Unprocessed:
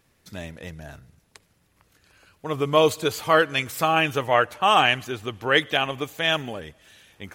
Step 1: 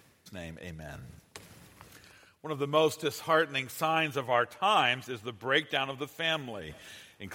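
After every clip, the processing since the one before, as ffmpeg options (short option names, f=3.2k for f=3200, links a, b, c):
-af "highpass=79,areverse,acompressor=mode=upward:threshold=-28dB:ratio=2.5,areverse,volume=-7.5dB"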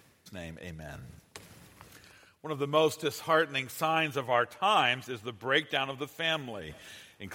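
-af anull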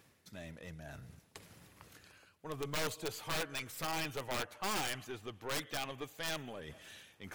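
-af "aeval=exprs='(mod(10*val(0)+1,2)-1)/10':c=same,aeval=exprs='(tanh(28.2*val(0)+0.35)-tanh(0.35))/28.2':c=same,volume=-4dB"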